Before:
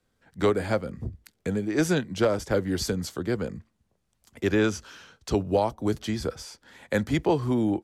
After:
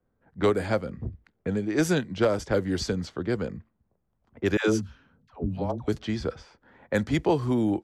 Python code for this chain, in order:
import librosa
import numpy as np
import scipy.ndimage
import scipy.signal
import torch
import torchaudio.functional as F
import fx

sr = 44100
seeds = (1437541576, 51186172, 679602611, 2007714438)

y = fx.dispersion(x, sr, late='lows', ms=122.0, hz=490.0, at=(4.57, 5.88))
y = fx.spec_box(y, sr, start_s=4.81, length_s=0.88, low_hz=290.0, high_hz=10000.0, gain_db=-11)
y = fx.env_lowpass(y, sr, base_hz=1100.0, full_db=-20.0)